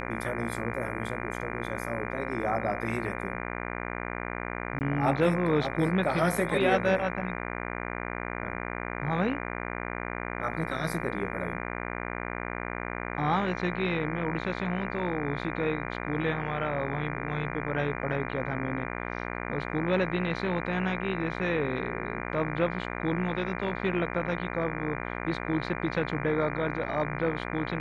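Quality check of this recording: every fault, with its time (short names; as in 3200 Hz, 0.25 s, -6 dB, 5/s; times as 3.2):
buzz 60 Hz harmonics 40 -35 dBFS
4.79–4.81 gap 19 ms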